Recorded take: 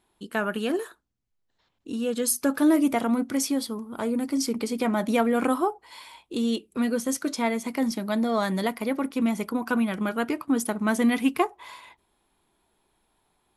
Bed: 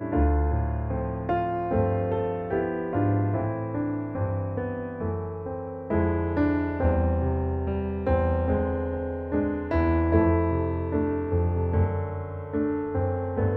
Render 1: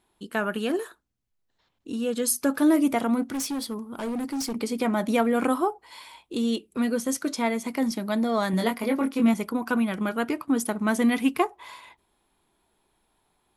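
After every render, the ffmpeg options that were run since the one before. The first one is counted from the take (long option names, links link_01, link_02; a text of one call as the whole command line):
ffmpeg -i in.wav -filter_complex "[0:a]asplit=3[link_01][link_02][link_03];[link_01]afade=type=out:start_time=3.22:duration=0.02[link_04];[link_02]volume=26.5dB,asoftclip=hard,volume=-26.5dB,afade=type=in:start_time=3.22:duration=0.02,afade=type=out:start_time=4.53:duration=0.02[link_05];[link_03]afade=type=in:start_time=4.53:duration=0.02[link_06];[link_04][link_05][link_06]amix=inputs=3:normalize=0,asettb=1/sr,asplit=3[link_07][link_08][link_09];[link_07]atrim=end=8.514[link_10];[link_08]atrim=start=8.51:end=9.34,asetpts=PTS-STARTPTS,afade=type=in:duration=0.004:curve=qsin,afade=type=out:start_time=0.826:duration=0.004:curve=qsin,asplit=2[link_11][link_12];[link_12]adelay=22,volume=-3.5dB[link_13];[link_11][link_13]amix=inputs=2:normalize=0,atrim=end_sample=36603[link_14];[link_09]atrim=start=9.336[link_15];[link_10][link_14]acrossfade=duration=0.004:curve1=hsin:curve2=qsin[link_16];[link_16][link_15]acrossfade=duration=0.004:curve1=qsin:curve2=hsin" out.wav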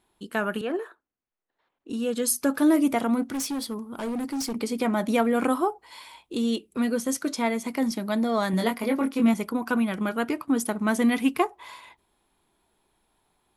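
ffmpeg -i in.wav -filter_complex "[0:a]asettb=1/sr,asplit=3[link_01][link_02][link_03];[link_01]atrim=end=0.614[link_04];[link_02]atrim=start=0.61:end=1.9,asetpts=PTS-STARTPTS,afade=type=in:duration=0.004:curve=qsin,afade=type=out:start_time=1.286:duration=0.004:curve=qsin,acrossover=split=270 2600:gain=0.141 1 0.141[link_05][link_06][link_07];[link_05][link_06][link_07]amix=inputs=3:normalize=0[link_08];[link_03]atrim=start=1.896[link_09];[link_04][link_08]acrossfade=duration=0.004:curve1=hsin:curve2=qsin[link_10];[link_10][link_09]acrossfade=duration=0.004:curve1=qsin:curve2=hsin" out.wav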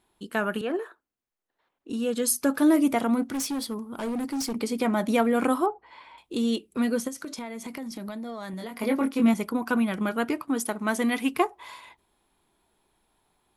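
ffmpeg -i in.wav -filter_complex "[0:a]asettb=1/sr,asplit=3[link_01][link_02][link_03];[link_01]atrim=end=5.664[link_04];[link_02]atrim=start=5.66:end=6.18,asetpts=PTS-STARTPTS,afade=type=in:duration=0.004:curve=qsin,afade=type=out:start_time=0.516:duration=0.004:curve=qsin,lowpass=2100[link_05];[link_03]atrim=start=6.176[link_06];[link_04][link_05]acrossfade=duration=0.004:curve1=hsin:curve2=qsin[link_07];[link_07][link_06]acrossfade=duration=0.004:curve1=qsin:curve2=hsin,asplit=3[link_08][link_09][link_10];[link_08]afade=type=out:start_time=7.07:duration=0.02[link_11];[link_09]acompressor=threshold=-32dB:ratio=16:attack=3.2:release=140:knee=1:detection=peak,afade=type=in:start_time=7.07:duration=0.02,afade=type=out:start_time=8.8:duration=0.02[link_12];[link_10]afade=type=in:start_time=8.8:duration=0.02[link_13];[link_11][link_12][link_13]amix=inputs=3:normalize=0,asettb=1/sr,asplit=3[link_14][link_15][link_16];[link_14]atrim=end=10.474[link_17];[link_15]atrim=start=10.47:end=11.32,asetpts=PTS-STARTPTS,afade=type=in:duration=0.004:curve=qsin,afade=type=out:start_time=0.846:duration=0.004:curve=qsin,equalizer=frequency=92:width=0.45:gain=-8.5[link_18];[link_16]atrim=start=11.316[link_19];[link_17][link_18]acrossfade=duration=0.004:curve1=hsin:curve2=qsin[link_20];[link_20][link_19]acrossfade=duration=0.004:curve1=qsin:curve2=hsin" out.wav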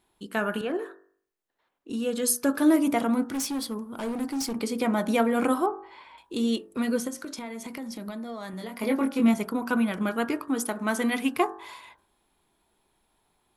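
ffmpeg -i in.wav -af "bandreject=frequency=48.3:width_type=h:width=4,bandreject=frequency=96.6:width_type=h:width=4,bandreject=frequency=144.9:width_type=h:width=4,bandreject=frequency=193.2:width_type=h:width=4,bandreject=frequency=241.5:width_type=h:width=4,bandreject=frequency=289.8:width_type=h:width=4,bandreject=frequency=338.1:width_type=h:width=4,bandreject=frequency=386.4:width_type=h:width=4,bandreject=frequency=434.7:width_type=h:width=4,bandreject=frequency=483:width_type=h:width=4,bandreject=frequency=531.3:width_type=h:width=4,bandreject=frequency=579.6:width_type=h:width=4,bandreject=frequency=627.9:width_type=h:width=4,bandreject=frequency=676.2:width_type=h:width=4,bandreject=frequency=724.5:width_type=h:width=4,bandreject=frequency=772.8:width_type=h:width=4,bandreject=frequency=821.1:width_type=h:width=4,bandreject=frequency=869.4:width_type=h:width=4,bandreject=frequency=917.7:width_type=h:width=4,bandreject=frequency=966:width_type=h:width=4,bandreject=frequency=1014.3:width_type=h:width=4,bandreject=frequency=1062.6:width_type=h:width=4,bandreject=frequency=1110.9:width_type=h:width=4,bandreject=frequency=1159.2:width_type=h:width=4,bandreject=frequency=1207.5:width_type=h:width=4,bandreject=frequency=1255.8:width_type=h:width=4,bandreject=frequency=1304.1:width_type=h:width=4,bandreject=frequency=1352.4:width_type=h:width=4,bandreject=frequency=1400.7:width_type=h:width=4,bandreject=frequency=1449:width_type=h:width=4,bandreject=frequency=1497.3:width_type=h:width=4,bandreject=frequency=1545.6:width_type=h:width=4,bandreject=frequency=1593.9:width_type=h:width=4,bandreject=frequency=1642.2:width_type=h:width=4,bandreject=frequency=1690.5:width_type=h:width=4,bandreject=frequency=1738.8:width_type=h:width=4,bandreject=frequency=1787.1:width_type=h:width=4,bandreject=frequency=1835.4:width_type=h:width=4" out.wav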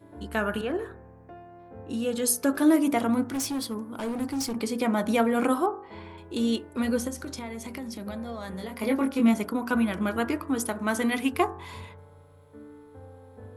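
ffmpeg -i in.wav -i bed.wav -filter_complex "[1:a]volume=-20.5dB[link_01];[0:a][link_01]amix=inputs=2:normalize=0" out.wav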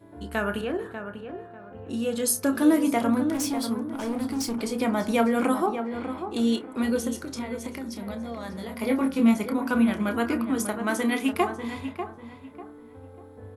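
ffmpeg -i in.wav -filter_complex "[0:a]asplit=2[link_01][link_02];[link_02]adelay=30,volume=-11dB[link_03];[link_01][link_03]amix=inputs=2:normalize=0,asplit=2[link_04][link_05];[link_05]adelay=594,lowpass=frequency=2100:poles=1,volume=-8.5dB,asplit=2[link_06][link_07];[link_07]adelay=594,lowpass=frequency=2100:poles=1,volume=0.3,asplit=2[link_08][link_09];[link_09]adelay=594,lowpass=frequency=2100:poles=1,volume=0.3,asplit=2[link_10][link_11];[link_11]adelay=594,lowpass=frequency=2100:poles=1,volume=0.3[link_12];[link_04][link_06][link_08][link_10][link_12]amix=inputs=5:normalize=0" out.wav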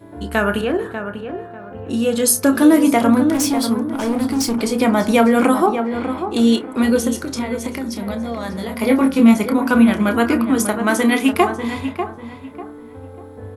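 ffmpeg -i in.wav -af "volume=9.5dB,alimiter=limit=-3dB:level=0:latency=1" out.wav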